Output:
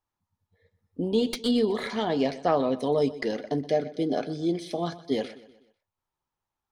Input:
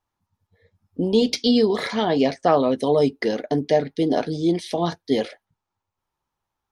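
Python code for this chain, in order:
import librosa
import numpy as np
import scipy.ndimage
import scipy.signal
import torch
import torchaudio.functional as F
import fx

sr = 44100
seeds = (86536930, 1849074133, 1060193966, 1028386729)

y = fx.tracing_dist(x, sr, depth_ms=0.031)
y = fx.peak_eq(y, sr, hz=5300.0, db=-10.5, octaves=0.29, at=(1.02, 1.9))
y = fx.notch_comb(y, sr, f0_hz=940.0, at=(3.69, 5.12))
y = fx.echo_feedback(y, sr, ms=124, feedback_pct=46, wet_db=-17)
y = y * 10.0 ** (-6.0 / 20.0)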